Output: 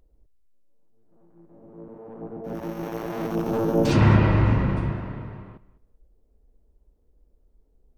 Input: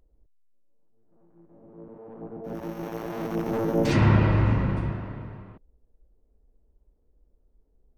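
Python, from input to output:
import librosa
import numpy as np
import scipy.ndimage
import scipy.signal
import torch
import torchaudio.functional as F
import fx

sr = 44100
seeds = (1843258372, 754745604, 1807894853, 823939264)

p1 = fx.peak_eq(x, sr, hz=2000.0, db=-8.5, octaves=0.36, at=(3.31, 4.01))
p2 = p1 + fx.echo_feedback(p1, sr, ms=203, feedback_pct=16, wet_db=-19, dry=0)
y = F.gain(torch.from_numpy(p2), 2.5).numpy()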